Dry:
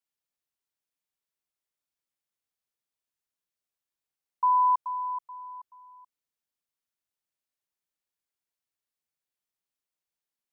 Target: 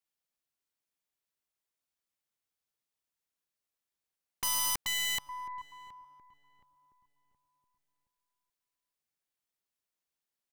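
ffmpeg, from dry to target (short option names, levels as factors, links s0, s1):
-filter_complex "[0:a]aeval=exprs='0.126*(cos(1*acos(clip(val(0)/0.126,-1,1)))-cos(1*PI/2))+0.0112*(cos(3*acos(clip(val(0)/0.126,-1,1)))-cos(3*PI/2))+0.00631*(cos(5*acos(clip(val(0)/0.126,-1,1)))-cos(5*PI/2))+0.0158*(cos(6*acos(clip(val(0)/0.126,-1,1)))-cos(6*PI/2))+0.0251*(cos(8*acos(clip(val(0)/0.126,-1,1)))-cos(8*PI/2))':c=same,aeval=exprs='(mod(20*val(0)+1,2)-1)/20':c=same,asplit=2[s0][s1];[s1]adelay=721,lowpass=f=1000:p=1,volume=0.15,asplit=2[s2][s3];[s3]adelay=721,lowpass=f=1000:p=1,volume=0.42,asplit=2[s4][s5];[s5]adelay=721,lowpass=f=1000:p=1,volume=0.42,asplit=2[s6][s7];[s7]adelay=721,lowpass=f=1000:p=1,volume=0.42[s8];[s0][s2][s4][s6][s8]amix=inputs=5:normalize=0"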